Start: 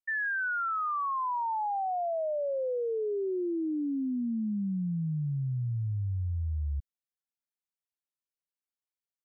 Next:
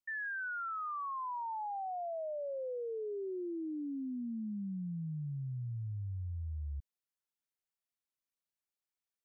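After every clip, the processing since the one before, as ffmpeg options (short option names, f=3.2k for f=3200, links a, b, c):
-af "alimiter=level_in=10.5dB:limit=-24dB:level=0:latency=1:release=21,volume=-10.5dB,volume=-1.5dB"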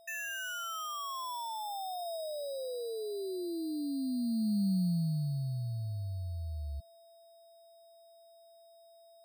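-af "equalizer=f=190:w=1.5:g=10,aeval=exprs='val(0)+0.00158*sin(2*PI*670*n/s)':c=same,acrusher=samples=10:mix=1:aa=0.000001"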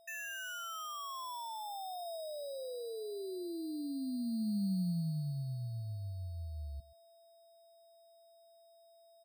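-af "aecho=1:1:128:0.0944,volume=-4dB"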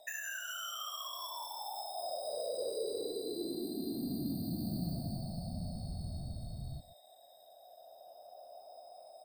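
-filter_complex "[0:a]afftfilt=real='re*pow(10,9/40*sin(2*PI*(1*log(max(b,1)*sr/1024/100)/log(2)-(-0.29)*(pts-256)/sr)))':imag='im*pow(10,9/40*sin(2*PI*(1*log(max(b,1)*sr/1024/100)/log(2)-(-0.29)*(pts-256)/sr)))':win_size=1024:overlap=0.75,acrossover=split=450|2900[a][b][c];[a]acompressor=threshold=-47dB:ratio=4[d];[b]acompressor=threshold=-52dB:ratio=4[e];[c]acompressor=threshold=-50dB:ratio=4[f];[d][e][f]amix=inputs=3:normalize=0,afftfilt=real='hypot(re,im)*cos(2*PI*random(0))':imag='hypot(re,im)*sin(2*PI*random(1))':win_size=512:overlap=0.75,volume=12.5dB"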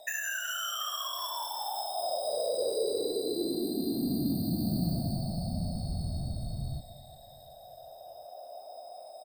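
-af "aecho=1:1:369|738|1107|1476:0.112|0.0539|0.0259|0.0124,volume=7dB"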